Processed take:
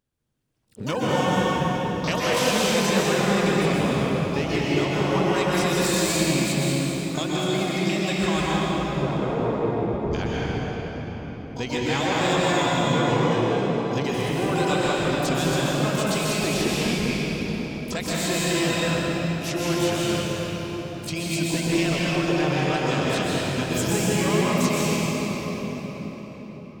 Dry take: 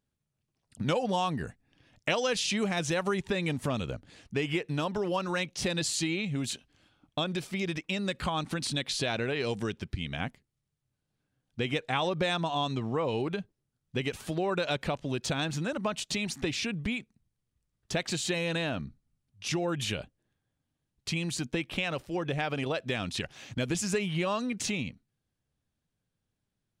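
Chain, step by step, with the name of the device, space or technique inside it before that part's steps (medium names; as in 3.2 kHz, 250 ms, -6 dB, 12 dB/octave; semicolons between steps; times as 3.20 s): 8.50–10.14 s: elliptic low-pass 1.1 kHz, stop band 40 dB; shimmer-style reverb (harmony voices +12 st -8 dB; reverberation RT60 5.4 s, pre-delay 117 ms, DRR -7 dB); dynamic bell 8 kHz, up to +5 dB, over -51 dBFS, Q 5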